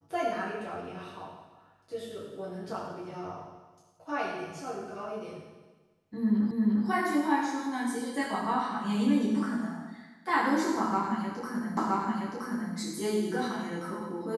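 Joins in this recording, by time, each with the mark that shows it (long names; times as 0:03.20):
0:06.51: the same again, the last 0.35 s
0:11.77: the same again, the last 0.97 s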